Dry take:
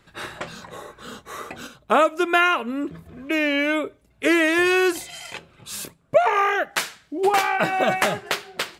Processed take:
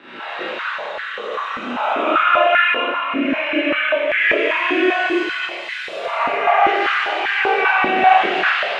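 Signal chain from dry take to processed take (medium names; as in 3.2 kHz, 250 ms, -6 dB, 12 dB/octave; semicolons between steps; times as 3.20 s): spectral blur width 378 ms; compression, threshold -27 dBFS, peak gain reduction 8.5 dB; resonant low-pass 2.8 kHz, resonance Q 2.2; Schroeder reverb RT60 2.4 s, combs from 33 ms, DRR -9 dB; chorus voices 4, 0.28 Hz, delay 28 ms, depth 1.1 ms; step-sequenced high-pass 5.1 Hz 270–1700 Hz; trim +2.5 dB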